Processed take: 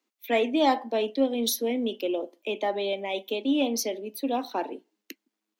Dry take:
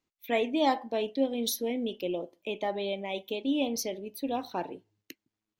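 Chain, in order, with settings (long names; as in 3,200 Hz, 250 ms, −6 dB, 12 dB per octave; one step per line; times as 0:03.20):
Butterworth high-pass 210 Hz 72 dB per octave
in parallel at −8 dB: soft clipping −23 dBFS, distortion −15 dB
on the sum: level +1.5 dB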